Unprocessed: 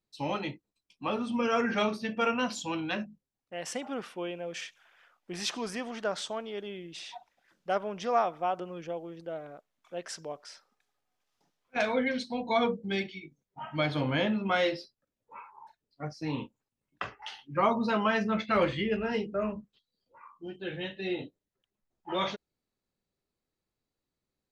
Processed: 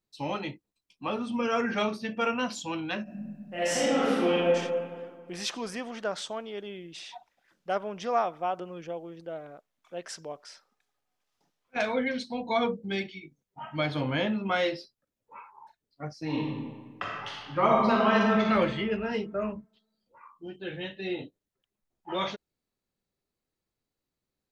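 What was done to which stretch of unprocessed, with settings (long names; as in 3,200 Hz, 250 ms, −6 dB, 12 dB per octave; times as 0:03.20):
0:03.03–0:04.50: thrown reverb, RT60 1.9 s, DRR −11.5 dB
0:16.23–0:18.49: thrown reverb, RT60 1.6 s, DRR −2 dB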